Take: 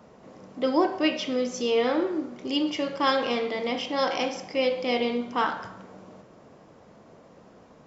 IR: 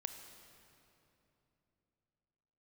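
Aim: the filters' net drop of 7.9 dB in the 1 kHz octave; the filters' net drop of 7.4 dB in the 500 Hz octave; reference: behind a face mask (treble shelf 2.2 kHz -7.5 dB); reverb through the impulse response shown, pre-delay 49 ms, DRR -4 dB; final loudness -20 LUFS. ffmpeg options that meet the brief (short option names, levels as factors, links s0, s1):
-filter_complex "[0:a]equalizer=f=500:t=o:g=-6.5,equalizer=f=1000:t=o:g=-6.5,asplit=2[s0][s1];[1:a]atrim=start_sample=2205,adelay=49[s2];[s1][s2]afir=irnorm=-1:irlink=0,volume=2[s3];[s0][s3]amix=inputs=2:normalize=0,highshelf=f=2200:g=-7.5,volume=2.11"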